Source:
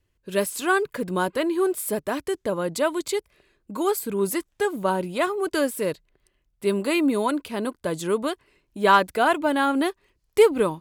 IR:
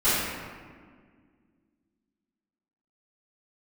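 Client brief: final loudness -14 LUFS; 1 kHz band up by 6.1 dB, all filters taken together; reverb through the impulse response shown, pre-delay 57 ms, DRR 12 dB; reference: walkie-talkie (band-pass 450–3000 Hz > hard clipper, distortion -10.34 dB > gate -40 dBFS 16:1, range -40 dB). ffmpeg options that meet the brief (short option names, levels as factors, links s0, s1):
-filter_complex "[0:a]equalizer=f=1000:t=o:g=7.5,asplit=2[s0][s1];[1:a]atrim=start_sample=2205,adelay=57[s2];[s1][s2]afir=irnorm=-1:irlink=0,volume=0.0376[s3];[s0][s3]amix=inputs=2:normalize=0,highpass=450,lowpass=3000,asoftclip=type=hard:threshold=0.251,agate=range=0.01:threshold=0.01:ratio=16,volume=3.16"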